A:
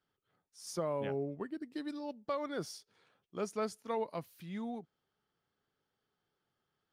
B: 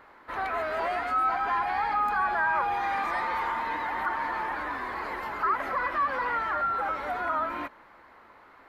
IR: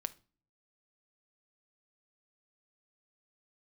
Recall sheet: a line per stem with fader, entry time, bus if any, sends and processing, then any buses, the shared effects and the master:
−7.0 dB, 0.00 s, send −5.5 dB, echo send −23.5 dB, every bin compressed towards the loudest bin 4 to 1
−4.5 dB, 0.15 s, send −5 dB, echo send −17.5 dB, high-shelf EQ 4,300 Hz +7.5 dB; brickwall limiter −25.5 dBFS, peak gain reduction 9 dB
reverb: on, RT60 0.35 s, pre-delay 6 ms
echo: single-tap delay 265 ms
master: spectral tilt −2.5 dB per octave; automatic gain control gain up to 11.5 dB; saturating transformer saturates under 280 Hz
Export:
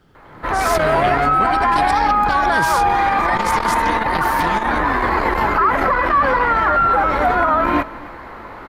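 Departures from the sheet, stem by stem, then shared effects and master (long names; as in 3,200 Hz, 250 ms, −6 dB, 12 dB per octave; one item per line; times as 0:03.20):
stem A −7.0 dB → +5.0 dB
stem B −4.5 dB → +3.5 dB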